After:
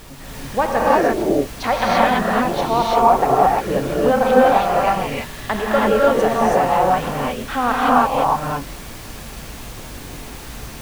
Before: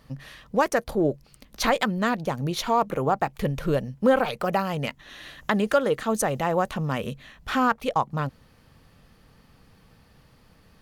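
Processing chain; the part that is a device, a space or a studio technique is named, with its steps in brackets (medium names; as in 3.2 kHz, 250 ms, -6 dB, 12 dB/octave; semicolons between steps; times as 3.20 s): horn gramophone (band-pass 270–3700 Hz; peaking EQ 750 Hz +6 dB 0.44 oct; wow and flutter; pink noise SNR 16 dB); bass shelf 250 Hz +3.5 dB; gated-style reverb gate 360 ms rising, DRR -6 dB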